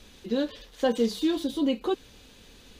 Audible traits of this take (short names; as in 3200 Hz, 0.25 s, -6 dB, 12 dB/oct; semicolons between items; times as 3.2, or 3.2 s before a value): noise floor -53 dBFS; spectral tilt -3.5 dB/oct